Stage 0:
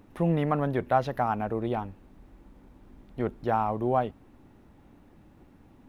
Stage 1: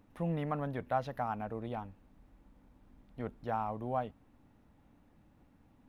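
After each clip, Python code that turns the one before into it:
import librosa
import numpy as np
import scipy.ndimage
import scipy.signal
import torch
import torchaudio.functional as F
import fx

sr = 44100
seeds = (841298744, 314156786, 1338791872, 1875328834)

y = fx.peak_eq(x, sr, hz=370.0, db=-9.0, octaves=0.25)
y = y * 10.0 ** (-8.5 / 20.0)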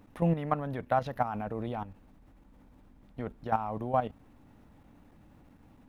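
y = fx.level_steps(x, sr, step_db=11)
y = y * 10.0 ** (9.0 / 20.0)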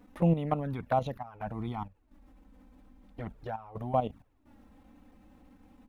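y = fx.step_gate(x, sr, bpm=64, pattern='xxxxx.xx.x', floor_db=-12.0, edge_ms=4.5)
y = fx.env_flanger(y, sr, rest_ms=4.3, full_db=-26.0)
y = y * 10.0 ** (2.5 / 20.0)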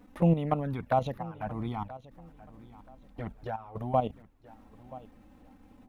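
y = fx.echo_feedback(x, sr, ms=979, feedback_pct=27, wet_db=-18.5)
y = y * 10.0 ** (1.5 / 20.0)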